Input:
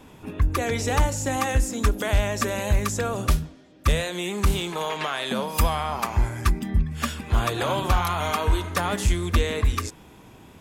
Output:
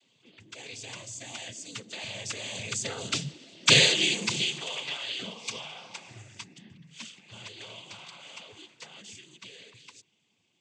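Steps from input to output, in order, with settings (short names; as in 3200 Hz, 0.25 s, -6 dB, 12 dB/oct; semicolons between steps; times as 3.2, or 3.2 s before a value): Doppler pass-by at 3.71, 17 m/s, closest 3.1 m; noise vocoder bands 16; resonant high shelf 2000 Hz +12 dB, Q 1.5; gain +2.5 dB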